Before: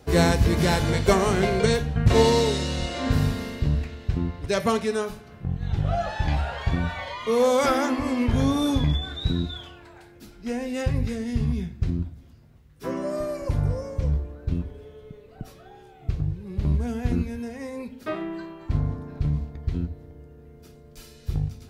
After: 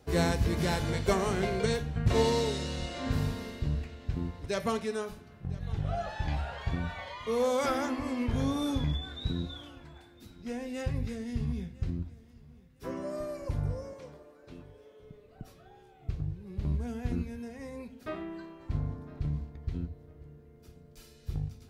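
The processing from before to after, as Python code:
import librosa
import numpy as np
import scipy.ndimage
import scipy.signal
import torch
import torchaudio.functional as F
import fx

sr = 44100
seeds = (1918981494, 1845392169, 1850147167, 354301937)

y = fx.highpass(x, sr, hz=410.0, slope=12, at=(13.93, 15.0))
y = fx.echo_feedback(y, sr, ms=1006, feedback_pct=28, wet_db=-22)
y = y * 10.0 ** (-8.0 / 20.0)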